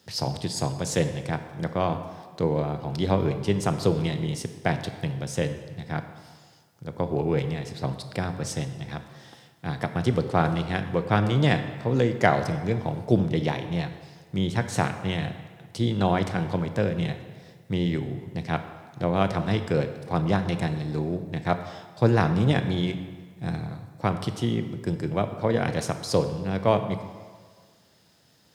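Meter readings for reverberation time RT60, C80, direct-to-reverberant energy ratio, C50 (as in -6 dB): 1.7 s, 11.0 dB, 8.5 dB, 10.0 dB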